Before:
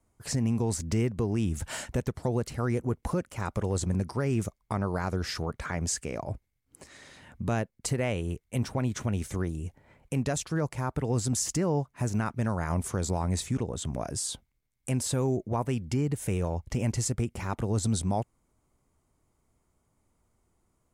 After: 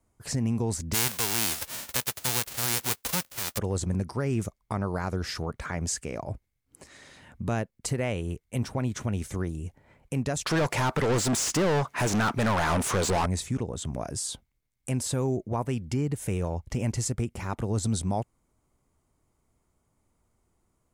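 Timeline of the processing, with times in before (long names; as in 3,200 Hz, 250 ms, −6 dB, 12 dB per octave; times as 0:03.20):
0:00.93–0:03.57: spectral envelope flattened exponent 0.1
0:10.46–0:13.26: mid-hump overdrive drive 30 dB, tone 4,400 Hz, clips at −18 dBFS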